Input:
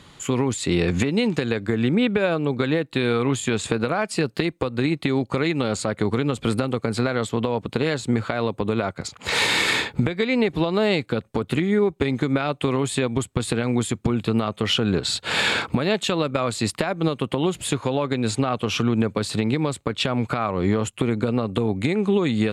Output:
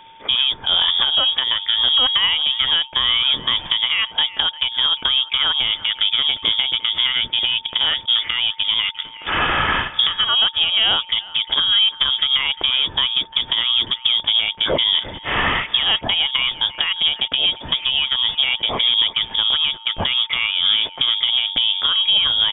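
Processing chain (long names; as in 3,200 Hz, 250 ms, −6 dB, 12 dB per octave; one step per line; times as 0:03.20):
leveller curve on the samples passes 1
far-end echo of a speakerphone 350 ms, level −16 dB
steady tone 2,600 Hz −43 dBFS
voice inversion scrambler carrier 3,500 Hz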